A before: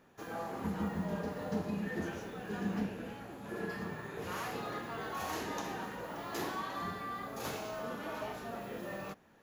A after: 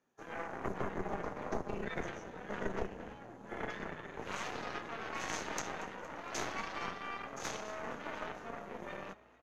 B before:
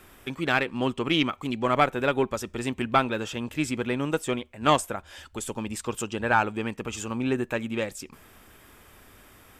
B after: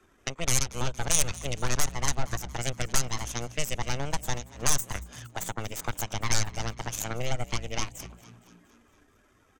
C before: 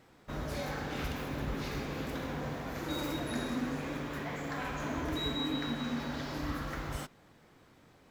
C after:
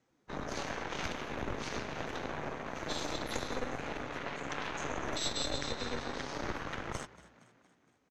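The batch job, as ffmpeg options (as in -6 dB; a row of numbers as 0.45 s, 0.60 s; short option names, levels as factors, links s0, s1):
-filter_complex "[0:a]lowpass=9200,afftdn=nr=12:nf=-50,aeval=exprs='0.501*(cos(1*acos(clip(val(0)/0.501,-1,1)))-cos(1*PI/2))+0.1*(cos(7*acos(clip(val(0)/0.501,-1,1)))-cos(7*PI/2))+0.224*(cos(8*acos(clip(val(0)/0.501,-1,1)))-cos(8*PI/2))':c=same,equalizer=f=6300:t=o:w=0.27:g=10.5,acrossover=split=110|7000[s0][s1][s2];[s1]acompressor=threshold=0.0141:ratio=4[s3];[s0][s3][s2]amix=inputs=3:normalize=0,asoftclip=type=tanh:threshold=0.282,lowshelf=f=200:g=-7,asplit=2[s4][s5];[s5]asplit=5[s6][s7][s8][s9][s10];[s6]adelay=232,afreqshift=58,volume=0.112[s11];[s7]adelay=464,afreqshift=116,volume=0.0617[s12];[s8]adelay=696,afreqshift=174,volume=0.0339[s13];[s9]adelay=928,afreqshift=232,volume=0.0186[s14];[s10]adelay=1160,afreqshift=290,volume=0.0102[s15];[s11][s12][s13][s14][s15]amix=inputs=5:normalize=0[s16];[s4][s16]amix=inputs=2:normalize=0,volume=1.68"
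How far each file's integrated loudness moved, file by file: -2.0 LU, -3.5 LU, -1.5 LU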